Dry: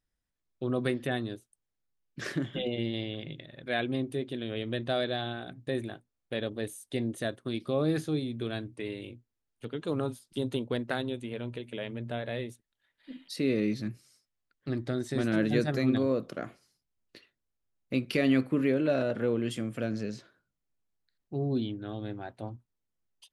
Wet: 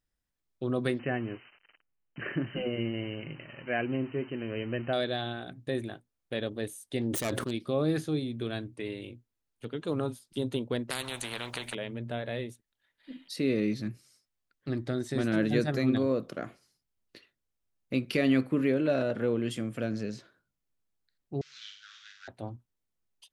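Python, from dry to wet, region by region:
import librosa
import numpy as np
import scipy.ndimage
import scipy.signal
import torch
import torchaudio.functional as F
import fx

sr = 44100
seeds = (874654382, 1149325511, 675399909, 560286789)

y = fx.chain(x, sr, fx.crossing_spikes(level_db=-27.0),
    fx.brickwall_lowpass(high_hz=3100.0), at=(0.99, 4.93))
y = fx.chain(y, sr, fx.self_delay(depth_ms=0.31),
    fx.sustainer(db_per_s=24.0), at=(7.01, 7.51))
y = fx.chain(y, sr, fx.high_shelf(hz=5600.0, db=-3.5),
    fx.spectral_comp(ratio=4.0), at=(10.9, 11.75))
y = fx.chain(y, sr, fx.cvsd(bps=32000),
    fx.ellip_highpass(hz=1400.0, order=4, stop_db=50),
    fx.room_flutter(wall_m=8.5, rt60_s=0.58), at=(21.41, 22.28))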